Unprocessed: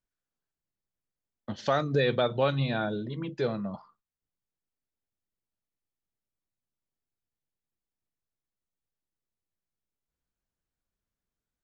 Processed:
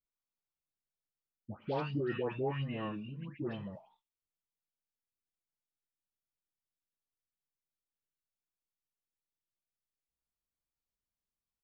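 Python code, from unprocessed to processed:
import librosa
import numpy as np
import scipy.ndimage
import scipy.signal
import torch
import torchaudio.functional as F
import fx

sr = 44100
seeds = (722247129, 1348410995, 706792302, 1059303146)

y = fx.formant_shift(x, sr, semitones=-5)
y = fx.dispersion(y, sr, late='highs', ms=145.0, hz=1400.0)
y = y * 10.0 ** (-8.5 / 20.0)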